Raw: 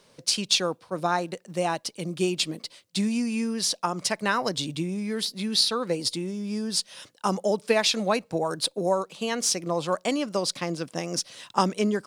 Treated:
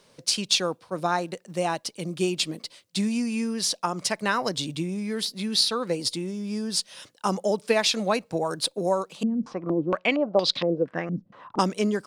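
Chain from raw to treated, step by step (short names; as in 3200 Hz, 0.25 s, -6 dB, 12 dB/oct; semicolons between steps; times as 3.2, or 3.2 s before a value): 9.23–11.59 stepped low-pass 4.3 Hz 210–3800 Hz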